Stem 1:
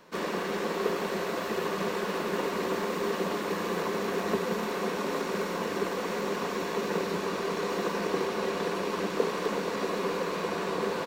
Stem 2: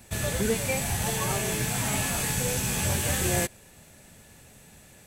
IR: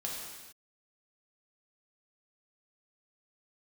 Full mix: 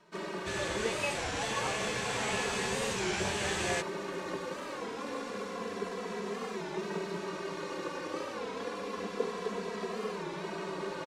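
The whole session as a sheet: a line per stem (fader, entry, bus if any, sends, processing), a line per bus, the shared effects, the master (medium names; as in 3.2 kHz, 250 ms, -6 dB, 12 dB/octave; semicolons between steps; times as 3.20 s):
-4.0 dB, 0.00 s, no send, endless flanger 2.7 ms -0.29 Hz
-2.0 dB, 0.35 s, no send, three-band isolator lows -12 dB, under 520 Hz, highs -22 dB, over 6.4 kHz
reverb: none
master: low-pass 11 kHz 24 dB/octave; warped record 33 1/3 rpm, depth 160 cents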